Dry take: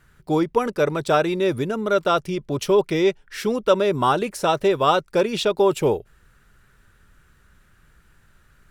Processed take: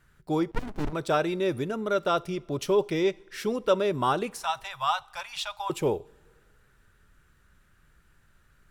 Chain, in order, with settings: 4.3–5.7 elliptic band-stop 110–790 Hz, stop band 40 dB; two-slope reverb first 0.41 s, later 2.1 s, from -16 dB, DRR 19 dB; 0.51–0.93 running maximum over 65 samples; gain -6 dB

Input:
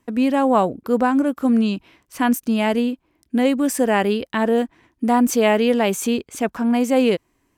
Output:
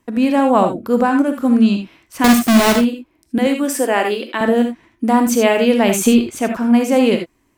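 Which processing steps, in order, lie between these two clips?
2.24–2.76 half-waves squared off; 3.38–4.41 Chebyshev high-pass 300 Hz, order 3; 5.81–6.31 transient shaper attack +9 dB, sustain +5 dB; non-linear reverb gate 0.1 s rising, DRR 5 dB; gain +2.5 dB

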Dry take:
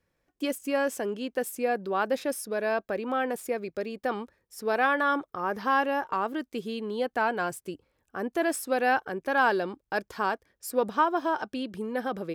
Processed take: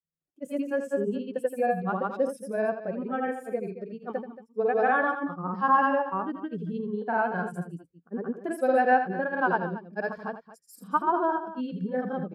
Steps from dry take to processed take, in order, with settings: grains, pitch spread up and down by 0 st; bell 170 Hz +13 dB 0.4 oct; loudspeakers at several distances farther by 28 m -7 dB, 78 m -10 dB; spectral expander 1.5:1; gain +2.5 dB

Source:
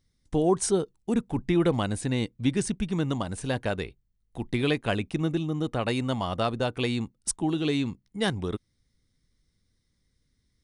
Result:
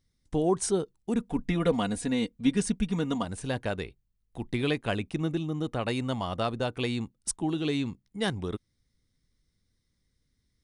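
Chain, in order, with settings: 1.2–3.25 comb 4.2 ms, depth 72%; gain -2.5 dB

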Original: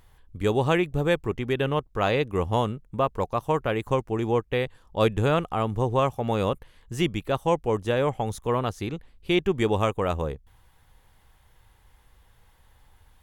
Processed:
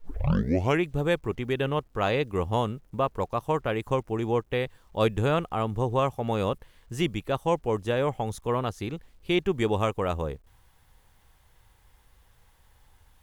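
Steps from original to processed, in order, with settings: tape start at the beginning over 0.82 s; bit-crush 11-bit; gain -2 dB

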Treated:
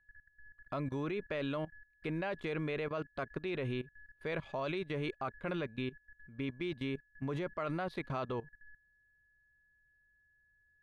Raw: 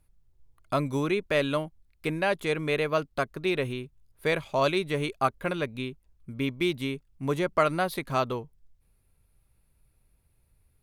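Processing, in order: whine 1700 Hz -52 dBFS; Bessel low-pass 3100 Hz, order 2; level quantiser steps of 18 dB

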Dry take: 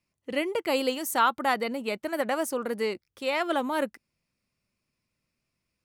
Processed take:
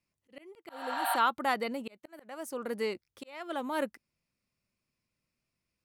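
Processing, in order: spectral repair 0.71–1.13, 580–8200 Hz after; auto swell 0.545 s; gain -4 dB

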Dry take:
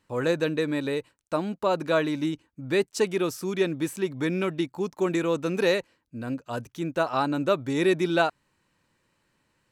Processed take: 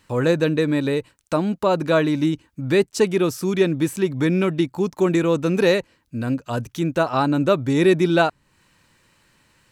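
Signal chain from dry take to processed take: low shelf 220 Hz +9 dB; mismatched tape noise reduction encoder only; gain +4 dB

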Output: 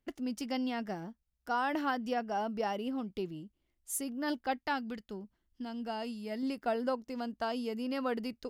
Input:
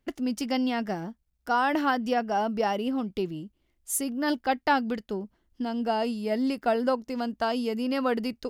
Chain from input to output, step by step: 4.58–6.43 bell 530 Hz -5 dB 2.1 oct; gain -7.5 dB

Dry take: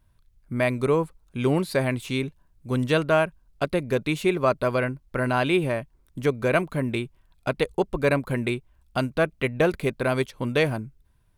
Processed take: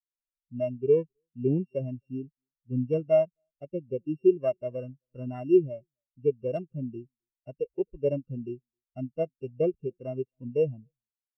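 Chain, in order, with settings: sample sorter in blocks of 16 samples; high shelf 2300 Hz -9 dB; wrapped overs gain 10.5 dB; on a send: echo 0.264 s -23.5 dB; on the sum: spectral expander 2.5:1

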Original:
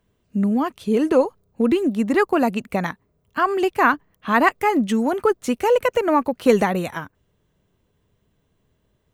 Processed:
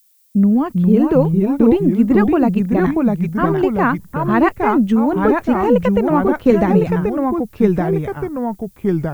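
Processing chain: gate -44 dBFS, range -40 dB; RIAA curve playback; low-pass opened by the level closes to 900 Hz, open at -12.5 dBFS; added noise violet -55 dBFS; echoes that change speed 0.352 s, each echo -2 st, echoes 2; gain -1 dB

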